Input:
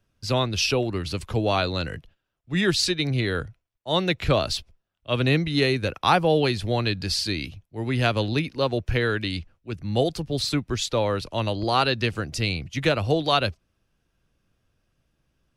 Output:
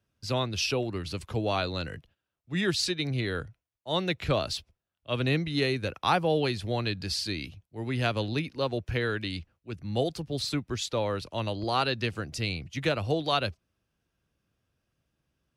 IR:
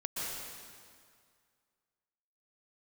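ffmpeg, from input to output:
-af "highpass=53,volume=0.531"

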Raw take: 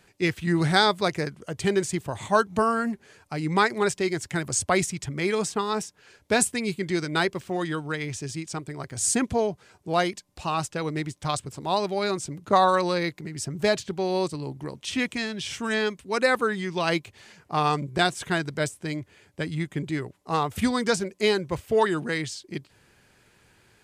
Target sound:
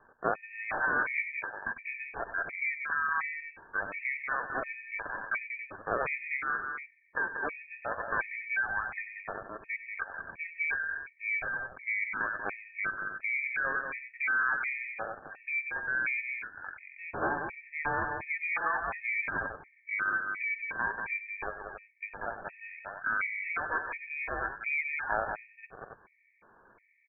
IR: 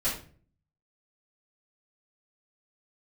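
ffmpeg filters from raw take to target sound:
-filter_complex "[0:a]highpass=f=700:t=q:w=4.9,alimiter=limit=0.178:level=0:latency=1:release=322,acontrast=75,crystalizer=i=4.5:c=0,atempo=0.88,lowpass=f=3100:t=q:w=0.5098,lowpass=f=3100:t=q:w=0.6013,lowpass=f=3100:t=q:w=0.9,lowpass=f=3100:t=q:w=2.563,afreqshift=-3600,aeval=exprs='val(0)*sin(2*PI*540*n/s)':c=same,asetrate=29433,aresample=44100,atempo=1.49831,highshelf=f=2500:g=-11.5,aecho=1:1:99.13|186.6|277:0.251|0.501|0.316,asplit=2[s0][s1];[1:a]atrim=start_sample=2205[s2];[s1][s2]afir=irnorm=-1:irlink=0,volume=0.0398[s3];[s0][s3]amix=inputs=2:normalize=0,afftfilt=real='re*gt(sin(2*PI*1.4*pts/sr)*(1-2*mod(floor(b*sr/1024/1800),2)),0)':imag='im*gt(sin(2*PI*1.4*pts/sr)*(1-2*mod(floor(b*sr/1024/1800),2)),0)':win_size=1024:overlap=0.75,volume=0.501"

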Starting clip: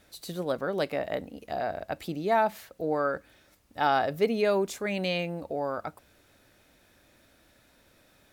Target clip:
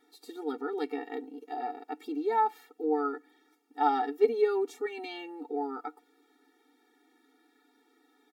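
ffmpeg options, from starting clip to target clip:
-af "highshelf=f=2700:g=-10.5,aecho=1:1:6.9:0.43,afftfilt=real='re*eq(mod(floor(b*sr/1024/240),2),1)':imag='im*eq(mod(floor(b*sr/1024/240),2),1)':win_size=1024:overlap=0.75"

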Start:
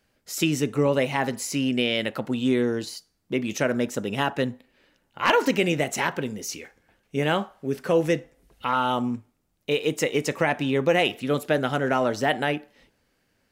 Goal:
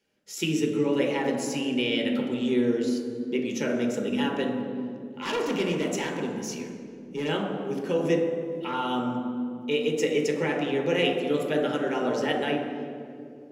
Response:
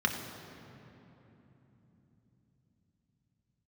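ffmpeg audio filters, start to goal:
-filter_complex "[0:a]asettb=1/sr,asplit=3[s0][s1][s2];[s0]atrim=end=5.214[s3];[s1]atrim=start=5.21:end=7.29,asetpts=PTS-STARTPTS,afade=t=in:d=0.004:c=qsin,afade=t=out:st=2.076:d=0.004:c=qsin,asoftclip=type=hard:threshold=0.0944[s4];[s2]atrim=start=7.286[s5];[s3][s4]acrossfade=d=0.004:c1=hsin:c2=qsin[s6];[s6][s5]acrossfade=d=0.004:c1=qsin:c2=hsin[s7];[1:a]atrim=start_sample=2205,asetrate=83790,aresample=44100[s8];[s7][s8]afir=irnorm=-1:irlink=0,volume=0.398"

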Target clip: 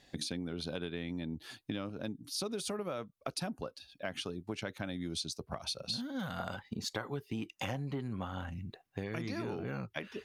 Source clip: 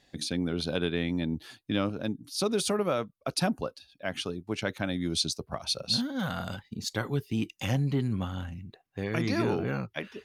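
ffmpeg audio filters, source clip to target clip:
-filter_complex "[0:a]asettb=1/sr,asplit=3[s0][s1][s2];[s0]atrim=end=6.394[s3];[s1]atrim=start=6.39:end=8.5,asetpts=PTS-STARTPTS,afade=t=in:d=0.004:c=qsin,afade=t=out:st=2.106:d=0.004:c=qsin,equalizer=f=910:w=0.47:g=9.5[s4];[s2]atrim=start=8.496[s5];[s3][s4]acrossfade=d=0.004:c1=hsin:c2=qsin[s6];[s6][s5]acrossfade=d=0.004:c1=qsin:c2=hsin,acompressor=threshold=0.0141:ratio=6,volume=1.19"

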